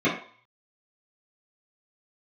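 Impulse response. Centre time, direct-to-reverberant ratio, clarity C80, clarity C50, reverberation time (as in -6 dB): 31 ms, -10.5 dB, 10.5 dB, 6.0 dB, 0.50 s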